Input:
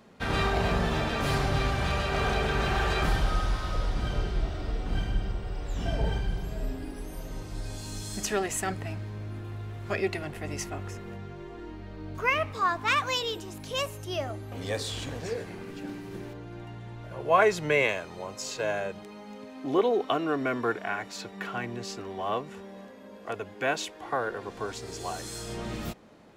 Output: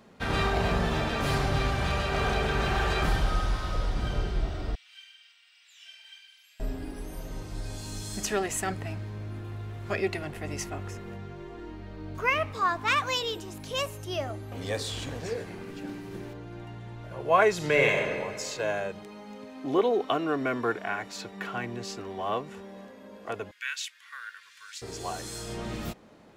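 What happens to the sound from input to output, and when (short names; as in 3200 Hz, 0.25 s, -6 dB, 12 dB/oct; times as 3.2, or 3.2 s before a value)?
4.75–6.6 ladder high-pass 2100 Hz, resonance 40%
17.54–18.1 reverb throw, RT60 1.8 s, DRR 1 dB
23.51–24.82 inverse Chebyshev high-pass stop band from 800 Hz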